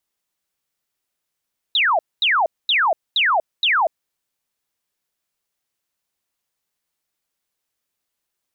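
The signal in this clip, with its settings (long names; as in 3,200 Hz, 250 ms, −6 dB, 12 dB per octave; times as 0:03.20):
repeated falling chirps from 4,000 Hz, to 600 Hz, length 0.24 s sine, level −14 dB, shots 5, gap 0.23 s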